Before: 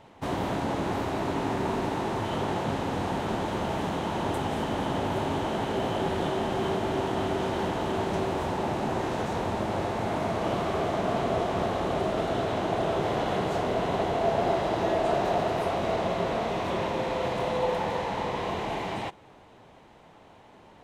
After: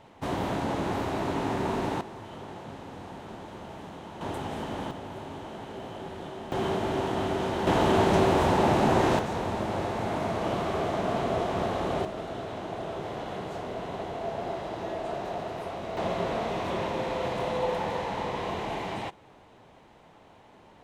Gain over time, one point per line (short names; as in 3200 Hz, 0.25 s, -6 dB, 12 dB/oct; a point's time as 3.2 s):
-0.5 dB
from 2.01 s -12.5 dB
from 4.21 s -5 dB
from 4.91 s -11 dB
from 6.52 s -0.5 dB
from 7.67 s +6.5 dB
from 9.19 s -1 dB
from 12.05 s -8 dB
from 15.97 s -1.5 dB